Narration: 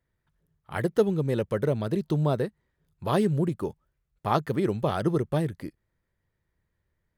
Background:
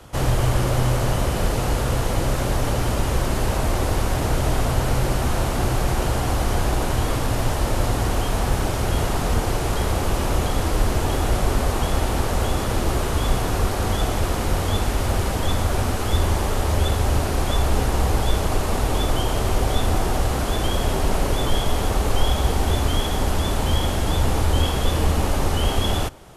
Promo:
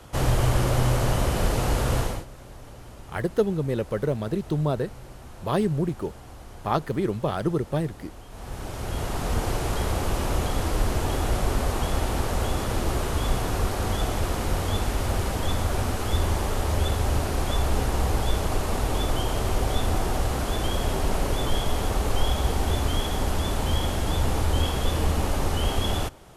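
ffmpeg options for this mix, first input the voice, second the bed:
-filter_complex "[0:a]adelay=2400,volume=0dB[a];[1:a]volume=16dB,afade=t=out:st=1.99:d=0.26:silence=0.1,afade=t=in:st=8.29:d=1.17:silence=0.125893[b];[a][b]amix=inputs=2:normalize=0"

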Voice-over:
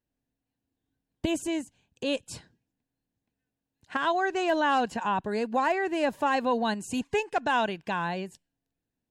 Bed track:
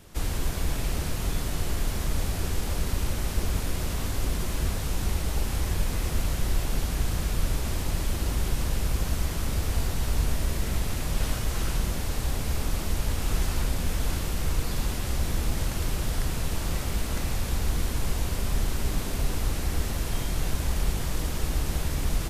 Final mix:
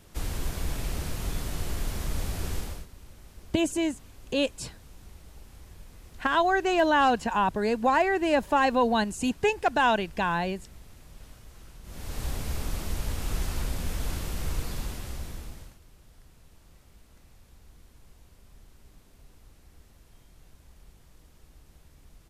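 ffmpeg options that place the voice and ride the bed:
-filter_complex "[0:a]adelay=2300,volume=3dB[a];[1:a]volume=14dB,afade=t=out:st=2.56:d=0.31:silence=0.125893,afade=t=in:st=11.83:d=0.41:silence=0.133352,afade=t=out:st=14.57:d=1.22:silence=0.0668344[b];[a][b]amix=inputs=2:normalize=0"

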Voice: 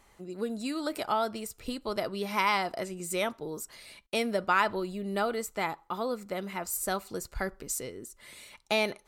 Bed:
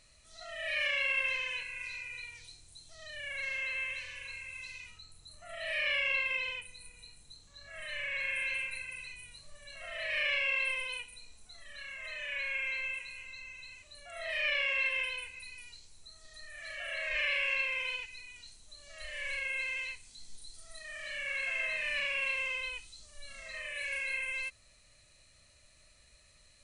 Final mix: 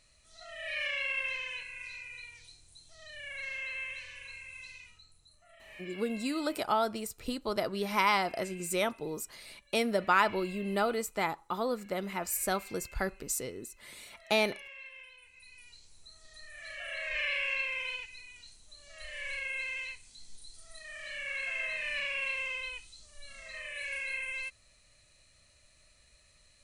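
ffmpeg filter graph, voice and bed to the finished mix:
-filter_complex "[0:a]adelay=5600,volume=0dB[a];[1:a]volume=13.5dB,afade=t=out:st=4.64:d=0.98:silence=0.188365,afade=t=in:st=15.19:d=0.75:silence=0.158489[b];[a][b]amix=inputs=2:normalize=0"

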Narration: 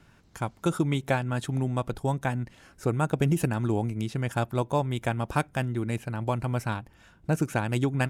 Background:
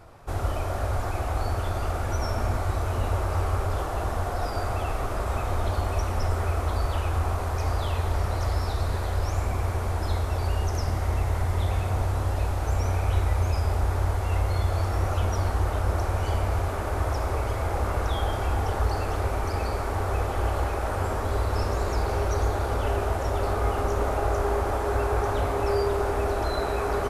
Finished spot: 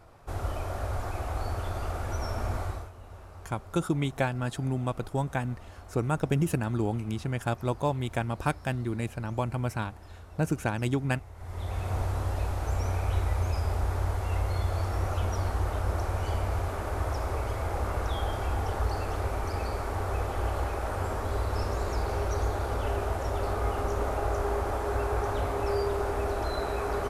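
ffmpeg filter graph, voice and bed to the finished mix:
-filter_complex "[0:a]adelay=3100,volume=-2dB[a];[1:a]volume=12dB,afade=t=out:st=2.62:d=0.29:silence=0.158489,afade=t=in:st=11.36:d=0.59:silence=0.141254[b];[a][b]amix=inputs=2:normalize=0"

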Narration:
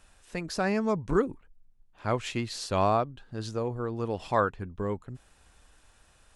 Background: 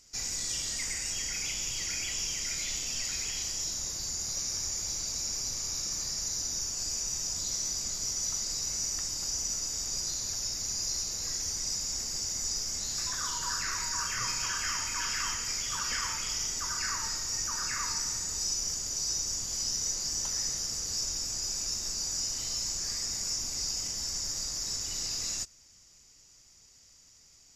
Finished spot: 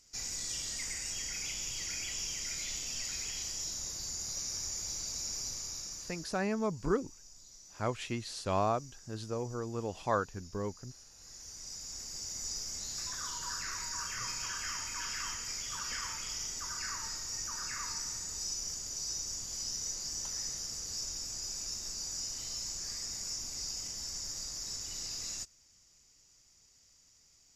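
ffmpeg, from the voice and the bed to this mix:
-filter_complex "[0:a]adelay=5750,volume=-5.5dB[a];[1:a]volume=12dB,afade=t=out:st=5.44:d=0.99:silence=0.125893,afade=t=in:st=11.13:d=1.37:silence=0.149624[b];[a][b]amix=inputs=2:normalize=0"

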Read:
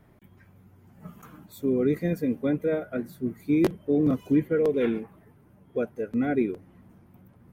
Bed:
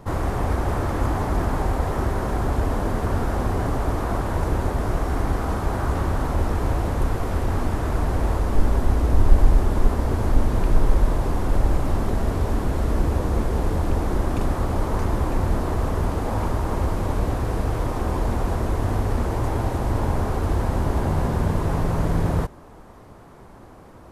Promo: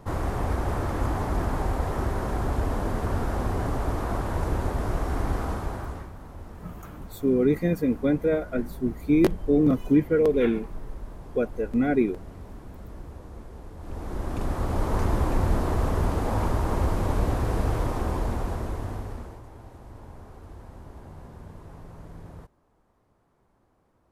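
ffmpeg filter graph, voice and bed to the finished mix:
-filter_complex "[0:a]adelay=5600,volume=2.5dB[a];[1:a]volume=14.5dB,afade=t=out:st=5.41:d=0.7:silence=0.158489,afade=t=in:st=13.77:d=1.23:silence=0.11885,afade=t=out:st=17.7:d=1.73:silence=0.0944061[b];[a][b]amix=inputs=2:normalize=0"

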